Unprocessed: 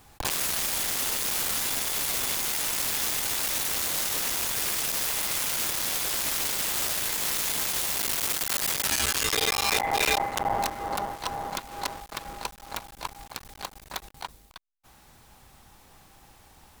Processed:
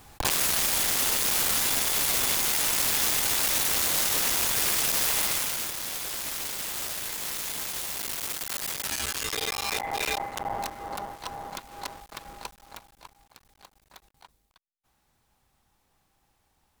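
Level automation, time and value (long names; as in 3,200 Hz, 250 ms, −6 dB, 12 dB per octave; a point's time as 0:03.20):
0:05.23 +3 dB
0:05.73 −5 dB
0:12.45 −5 dB
0:13.20 −16 dB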